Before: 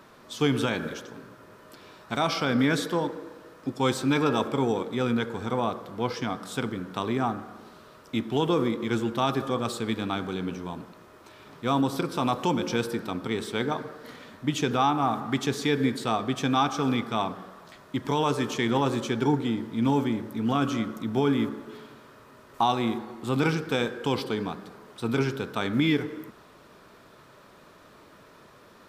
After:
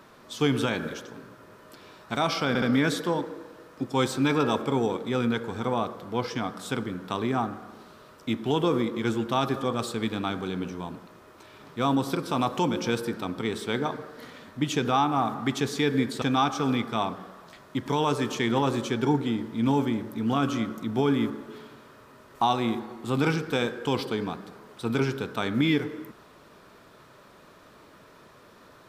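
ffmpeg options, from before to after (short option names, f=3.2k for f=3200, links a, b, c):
-filter_complex "[0:a]asplit=4[a][b][c][d];[a]atrim=end=2.552[e];[b]atrim=start=2.478:end=2.552[f];[c]atrim=start=2.478:end=16.082[g];[d]atrim=start=16.408[h];[e][f]acrossfade=d=0.004:c1=hsin:c2=hsin[i];[i][g]acrossfade=d=0.004:c1=hsin:c2=hsin[j];[j][h]acrossfade=d=0.004:c1=hsin:c2=hsin"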